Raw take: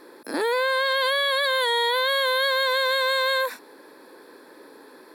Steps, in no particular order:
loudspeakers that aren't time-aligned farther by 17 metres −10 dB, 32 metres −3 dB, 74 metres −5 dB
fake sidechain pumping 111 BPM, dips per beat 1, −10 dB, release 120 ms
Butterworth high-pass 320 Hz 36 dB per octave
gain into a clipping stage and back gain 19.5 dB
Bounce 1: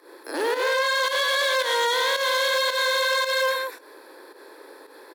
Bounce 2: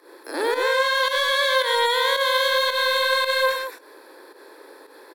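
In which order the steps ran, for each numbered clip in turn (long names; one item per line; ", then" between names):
loudspeakers that aren't time-aligned, then gain into a clipping stage and back, then Butterworth high-pass, then fake sidechain pumping
Butterworth high-pass, then gain into a clipping stage and back, then loudspeakers that aren't time-aligned, then fake sidechain pumping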